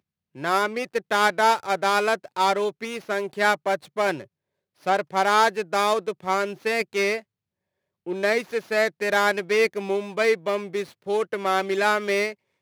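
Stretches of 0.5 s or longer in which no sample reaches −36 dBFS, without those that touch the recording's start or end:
0:04.24–0:04.86
0:07.20–0:08.07

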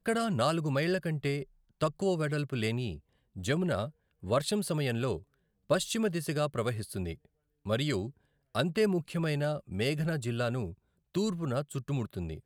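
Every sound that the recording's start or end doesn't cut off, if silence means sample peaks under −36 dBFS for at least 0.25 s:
0:01.81–0:02.96
0:03.37–0:03.87
0:04.24–0:05.18
0:05.70–0:07.13
0:07.66–0:08.08
0:08.55–0:10.71

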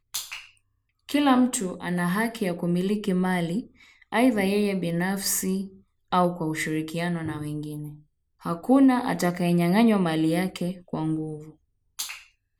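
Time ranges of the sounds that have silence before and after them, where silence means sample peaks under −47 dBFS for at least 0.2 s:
0:01.09–0:05.80
0:06.12–0:08.00
0:08.41–0:11.52
0:11.99–0:12.26

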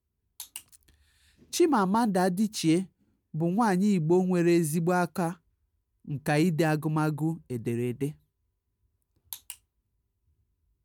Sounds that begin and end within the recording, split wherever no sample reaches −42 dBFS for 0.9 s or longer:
0:09.33–0:09.54

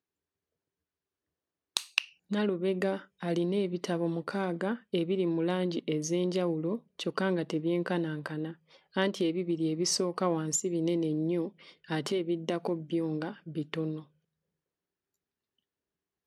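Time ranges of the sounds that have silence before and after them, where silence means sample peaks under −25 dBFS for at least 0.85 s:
0:01.77–0:13.87

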